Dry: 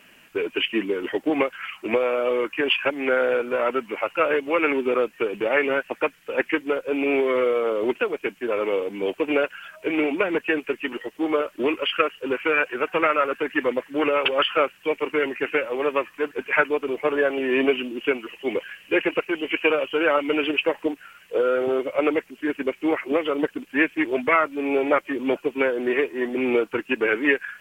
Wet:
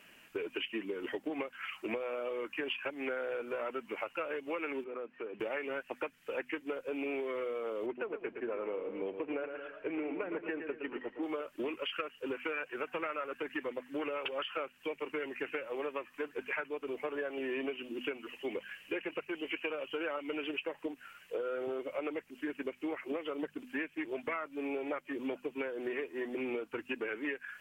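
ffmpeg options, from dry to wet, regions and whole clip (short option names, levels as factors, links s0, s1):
-filter_complex "[0:a]asettb=1/sr,asplit=3[s0][s1][s2];[s0]atrim=end=4.844[s3];[s1]atrim=start=4.84:end=5.4,asetpts=PTS-STARTPTS,afade=t=in:d=0.004:c=qsin,afade=t=out:st=0.556:d=0.004:c=qsin,highpass=140,lowpass=2100,acompressor=threshold=0.0112:ratio=2:attack=3.2:release=140:knee=1:detection=peak[s4];[s2]atrim=start=5.396[s5];[s3][s4]acrossfade=d=0.004:c1=hsin:c2=qsin[s6];[s6][s5]acrossfade=d=0.004:c1=qsin:c2=hsin,asettb=1/sr,asplit=3[s7][s8][s9];[s7]atrim=end=7.864[s10];[s8]atrim=start=7.86:end=11.23,asetpts=PTS-STARTPTS,afade=t=in:d=0.004:c=qsin,afade=t=out:st=3.366:d=0.004:c=qsin,lowpass=1900,aecho=1:1:114|228|342|456:0.316|0.123|0.0481|0.0188,atrim=end_sample=148617[s11];[s9]atrim=start=11.226[s12];[s10][s11]acrossfade=d=0.004:c1=hsin:c2=qsin[s13];[s13][s12]acrossfade=d=0.004:c1=qsin:c2=hsin,bandreject=f=50:t=h:w=6,bandreject=f=100:t=h:w=6,bandreject=f=150:t=h:w=6,bandreject=f=200:t=h:w=6,bandreject=f=250:t=h:w=6,acompressor=threshold=0.0398:ratio=6,volume=0.473"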